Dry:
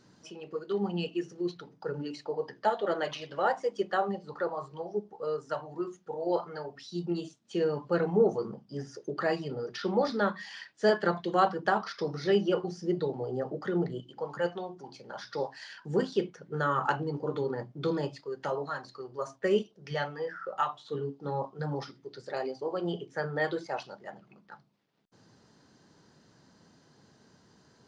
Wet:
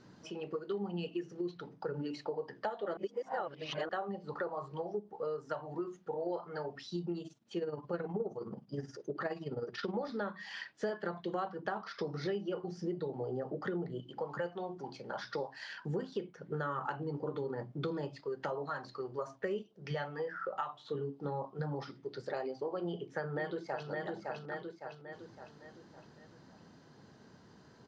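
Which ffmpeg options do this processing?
-filter_complex "[0:a]asplit=3[a][b][c];[a]afade=t=out:st=7.18:d=0.02[d];[b]tremolo=f=19:d=0.65,afade=t=in:st=7.18:d=0.02,afade=t=out:st=9.94:d=0.02[e];[c]afade=t=in:st=9.94:d=0.02[f];[d][e][f]amix=inputs=3:normalize=0,asplit=2[g][h];[h]afade=t=in:st=22.8:d=0.01,afade=t=out:st=23.89:d=0.01,aecho=0:1:560|1120|1680|2240|2800:0.421697|0.189763|0.0853935|0.0384271|0.0172922[i];[g][i]amix=inputs=2:normalize=0,asplit=3[j][k][l];[j]atrim=end=2.972[m];[k]atrim=start=2.968:end=3.892,asetpts=PTS-STARTPTS,areverse[n];[l]atrim=start=3.888[o];[m][n]acrossfade=d=0.004:c1=hsin:c2=hsin[p];[p][o]acrossfade=d=0.004:c1=hsin:c2=hsin,aemphasis=mode=reproduction:type=50fm,acompressor=threshold=-37dB:ratio=6,volume=2.5dB"

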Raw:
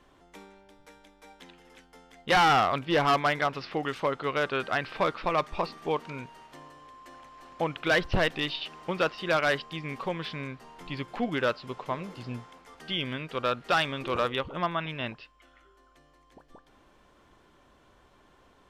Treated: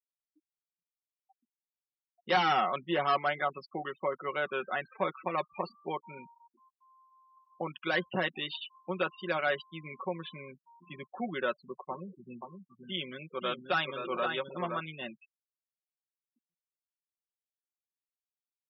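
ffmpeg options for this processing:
-filter_complex "[0:a]asettb=1/sr,asplit=3[a][b][c];[a]atrim=end=11.904[d];[b]atrim=start=11.9:end=14.8,asetpts=PTS-STARTPTS,afade=t=in:d=0.004:c=qsin,afade=t=out:st=2.896:d=0.004:c=qsin,aecho=1:1:520:0.531,atrim=end_sample=127890[e];[c]atrim=start=14.796[f];[d][e]acrossfade=d=0.004:c1=hsin:c2=qsin[g];[g][f]acrossfade=d=0.004:c1=qsin:c2=hsin,afftfilt=real='re*gte(hypot(re,im),0.0282)':imag='im*gte(hypot(re,im),0.0282)':win_size=1024:overlap=0.75,highpass=f=170:w=0.5412,highpass=f=170:w=1.3066,aecho=1:1:5.4:0.65,volume=-6.5dB"

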